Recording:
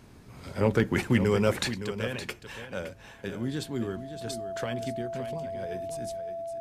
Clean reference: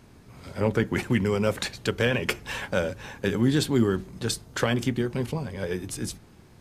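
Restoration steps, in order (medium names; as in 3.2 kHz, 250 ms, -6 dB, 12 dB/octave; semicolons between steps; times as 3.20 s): clip repair -12 dBFS; band-stop 670 Hz, Q 30; inverse comb 565 ms -11 dB; trim 0 dB, from 1.74 s +10 dB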